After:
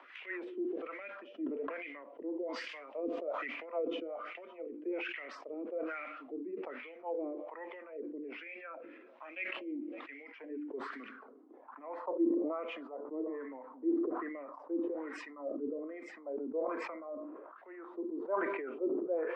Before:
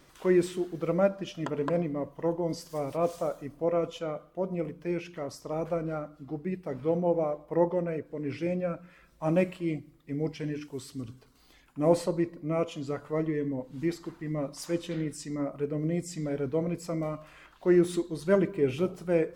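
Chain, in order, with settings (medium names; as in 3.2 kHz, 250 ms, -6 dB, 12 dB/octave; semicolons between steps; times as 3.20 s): steep high-pass 220 Hz 96 dB/octave; treble shelf 6.4 kHz +8 dB; upward compressor, threshold -29 dBFS; feedback echo behind a high-pass 560 ms, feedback 54%, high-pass 2 kHz, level -23 dB; low-pass sweep 2.7 kHz -> 1 kHz, 10.18–11.58 s; rotary cabinet horn 5 Hz, later 0.65 Hz, at 5.24 s; wah-wah 1.2 Hz 300–2300 Hz, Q 3.7; decay stretcher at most 33 dB/s; trim -2 dB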